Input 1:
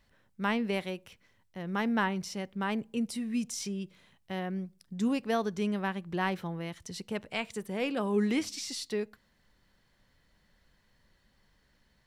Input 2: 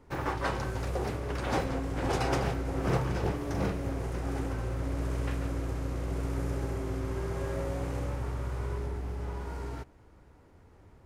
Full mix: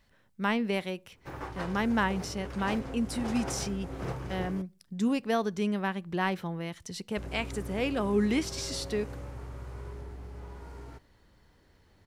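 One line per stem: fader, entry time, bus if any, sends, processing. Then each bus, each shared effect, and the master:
+1.5 dB, 0.00 s, no send, dry
-7.5 dB, 1.15 s, muted 4.62–7.17, no send, dry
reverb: off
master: dry

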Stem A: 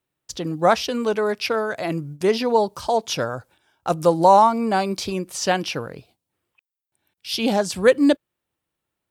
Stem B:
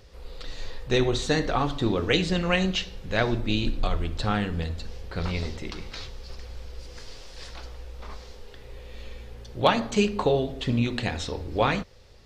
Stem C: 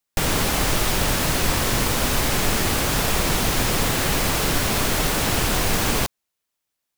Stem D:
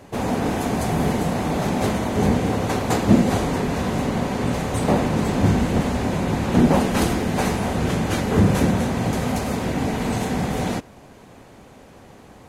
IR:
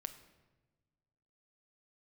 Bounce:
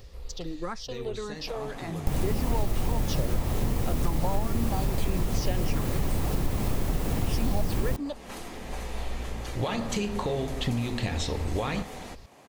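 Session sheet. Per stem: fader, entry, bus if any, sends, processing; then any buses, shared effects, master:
-6.5 dB, 0.00 s, bus B, no send, endless phaser -1.8 Hz
+1.0 dB, 0.00 s, bus A, no send, limiter -17 dBFS, peak gain reduction 10.5 dB; auto duck -16 dB, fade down 0.70 s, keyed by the first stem
-7.0 dB, 1.90 s, bus A, no send, tilt shelf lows +8 dB, about 820 Hz
-3.5 dB, 1.35 s, bus B, no send, HPF 670 Hz 6 dB/oct; compressor 2.5:1, threshold -40 dBFS, peak gain reduction 14.5 dB
bus A: 0.0 dB, high shelf 9500 Hz +9 dB; compressor, threshold -27 dBFS, peak gain reduction 11 dB
bus B: 0.0 dB, compressor 4:1, threshold -33 dBFS, peak gain reduction 14 dB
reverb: off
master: low shelf 120 Hz +7 dB; notch 1500 Hz, Q 14

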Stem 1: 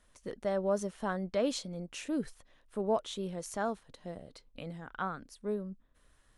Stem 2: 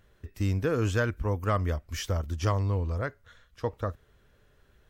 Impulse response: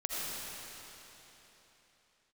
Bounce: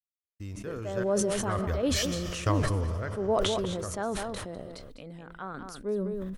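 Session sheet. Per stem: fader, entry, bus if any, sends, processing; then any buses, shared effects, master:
+0.5 dB, 0.40 s, no send, echo send -10.5 dB, bell 380 Hz +4.5 dB 0.9 oct; random-step tremolo 3.5 Hz; sustainer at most 130 dB/s
1.22 s -14 dB -> 1.79 s -1.5 dB -> 2.65 s -1.5 dB -> 3.17 s -10 dB, 0.00 s, send -13 dB, no echo send, step gate ".....xx.xxxxx" 189 bpm -60 dB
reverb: on, RT60 3.8 s, pre-delay 40 ms
echo: echo 0.202 s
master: sustainer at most 21 dB/s

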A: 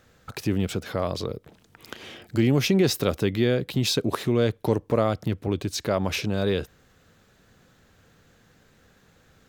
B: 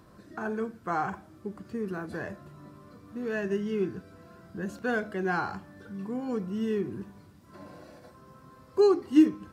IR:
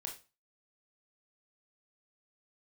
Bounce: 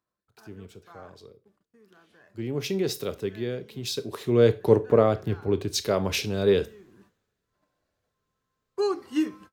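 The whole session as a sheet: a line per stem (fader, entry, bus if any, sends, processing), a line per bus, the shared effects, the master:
1.94 s -22 dB -> 2.71 s -14.5 dB -> 4.1 s -14.5 dB -> 4.36 s -4 dB, 0.00 s, send -4.5 dB, bell 420 Hz +8 dB 0.35 oct; three-band expander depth 70%
+2.0 dB, 0.00 s, no send, gate -41 dBFS, range -28 dB; low shelf 480 Hz -12 dB; auto duck -19 dB, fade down 0.25 s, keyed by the first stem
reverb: on, RT60 0.30 s, pre-delay 20 ms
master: dry

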